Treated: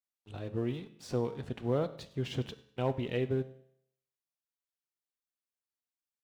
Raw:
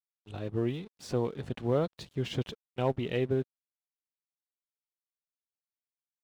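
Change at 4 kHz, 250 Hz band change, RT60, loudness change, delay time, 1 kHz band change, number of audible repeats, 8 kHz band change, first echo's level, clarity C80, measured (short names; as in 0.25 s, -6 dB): -3.0 dB, -2.0 dB, 0.70 s, -2.5 dB, 99 ms, -3.0 dB, 2, n/a, -21.5 dB, 16.5 dB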